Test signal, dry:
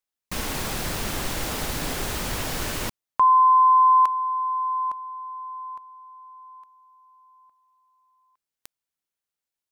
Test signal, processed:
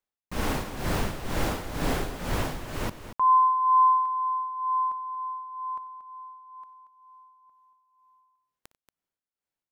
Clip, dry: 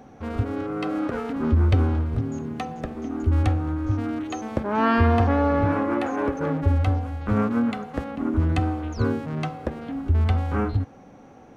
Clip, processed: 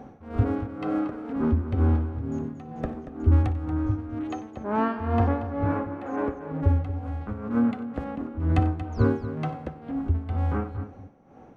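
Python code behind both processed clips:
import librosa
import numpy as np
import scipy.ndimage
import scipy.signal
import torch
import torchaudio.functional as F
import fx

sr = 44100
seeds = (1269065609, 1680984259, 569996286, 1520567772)

p1 = fx.high_shelf(x, sr, hz=2400.0, db=-11.5)
p2 = fx.rider(p1, sr, range_db=5, speed_s=2.0)
p3 = p2 * (1.0 - 0.87 / 2.0 + 0.87 / 2.0 * np.cos(2.0 * np.pi * 2.1 * (np.arange(len(p2)) / sr)))
y = p3 + fx.echo_multitap(p3, sr, ms=(59, 93, 232), db=(-18.5, -19.0, -12.0), dry=0)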